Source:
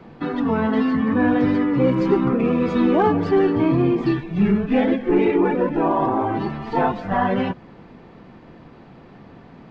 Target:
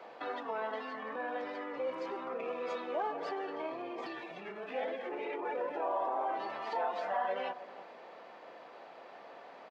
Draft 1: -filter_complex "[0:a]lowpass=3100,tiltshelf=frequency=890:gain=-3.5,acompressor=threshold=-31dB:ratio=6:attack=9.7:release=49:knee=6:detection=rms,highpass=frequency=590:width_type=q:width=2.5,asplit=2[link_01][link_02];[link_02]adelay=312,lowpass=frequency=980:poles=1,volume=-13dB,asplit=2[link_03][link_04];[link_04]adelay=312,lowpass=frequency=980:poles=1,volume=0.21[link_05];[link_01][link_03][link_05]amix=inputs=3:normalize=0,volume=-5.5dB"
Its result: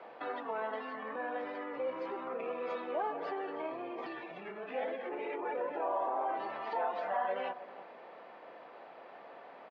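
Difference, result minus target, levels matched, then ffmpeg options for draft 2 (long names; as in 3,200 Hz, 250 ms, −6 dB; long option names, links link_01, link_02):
4,000 Hz band −3.5 dB
-filter_complex "[0:a]tiltshelf=frequency=890:gain=-3.5,acompressor=threshold=-31dB:ratio=6:attack=9.7:release=49:knee=6:detection=rms,highpass=frequency=590:width_type=q:width=2.5,asplit=2[link_01][link_02];[link_02]adelay=312,lowpass=frequency=980:poles=1,volume=-13dB,asplit=2[link_03][link_04];[link_04]adelay=312,lowpass=frequency=980:poles=1,volume=0.21[link_05];[link_01][link_03][link_05]amix=inputs=3:normalize=0,volume=-5.5dB"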